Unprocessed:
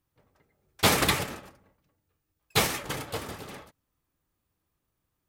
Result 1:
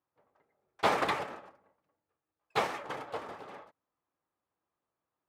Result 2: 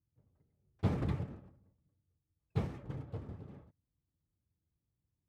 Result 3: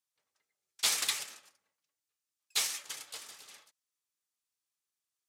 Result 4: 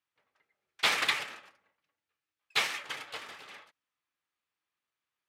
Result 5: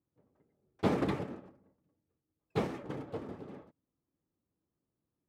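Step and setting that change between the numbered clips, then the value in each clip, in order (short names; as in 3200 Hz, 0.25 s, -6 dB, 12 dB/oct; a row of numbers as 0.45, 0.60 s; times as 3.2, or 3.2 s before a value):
band-pass, frequency: 820, 100, 6700, 2400, 270 Hz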